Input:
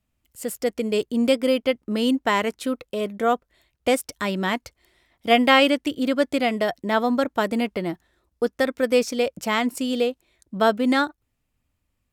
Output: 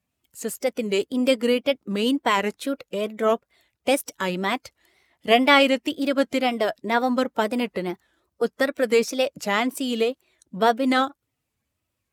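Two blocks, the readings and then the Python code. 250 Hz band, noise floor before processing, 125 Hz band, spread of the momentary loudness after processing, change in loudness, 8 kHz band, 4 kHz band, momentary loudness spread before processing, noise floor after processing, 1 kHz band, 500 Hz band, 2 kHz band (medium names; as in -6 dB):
-1.5 dB, -76 dBFS, -1.0 dB, 10 LU, -0.5 dB, +0.5 dB, +0.5 dB, 10 LU, -80 dBFS, 0.0 dB, 0.0 dB, 0.0 dB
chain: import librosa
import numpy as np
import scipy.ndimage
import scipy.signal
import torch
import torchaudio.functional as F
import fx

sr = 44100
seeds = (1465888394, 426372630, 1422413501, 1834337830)

y = fx.spec_quant(x, sr, step_db=15)
y = scipy.signal.sosfilt(scipy.signal.butter(2, 76.0, 'highpass', fs=sr, output='sos'), y)
y = fx.low_shelf(y, sr, hz=250.0, db=-4.5)
y = fx.wow_flutter(y, sr, seeds[0], rate_hz=2.1, depth_cents=130.0)
y = y * 10.0 ** (1.0 / 20.0)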